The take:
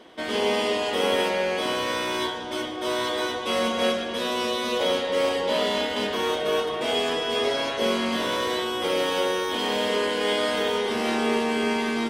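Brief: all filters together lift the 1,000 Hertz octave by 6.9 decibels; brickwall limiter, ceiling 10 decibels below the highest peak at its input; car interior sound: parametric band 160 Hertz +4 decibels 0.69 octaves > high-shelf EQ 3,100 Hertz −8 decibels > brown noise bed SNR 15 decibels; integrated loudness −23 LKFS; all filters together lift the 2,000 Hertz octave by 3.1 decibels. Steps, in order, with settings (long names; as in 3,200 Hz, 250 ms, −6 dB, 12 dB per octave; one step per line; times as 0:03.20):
parametric band 1,000 Hz +8 dB
parametric band 2,000 Hz +4 dB
brickwall limiter −17 dBFS
parametric band 160 Hz +4 dB 0.69 octaves
high-shelf EQ 3,100 Hz −8 dB
brown noise bed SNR 15 dB
level +3.5 dB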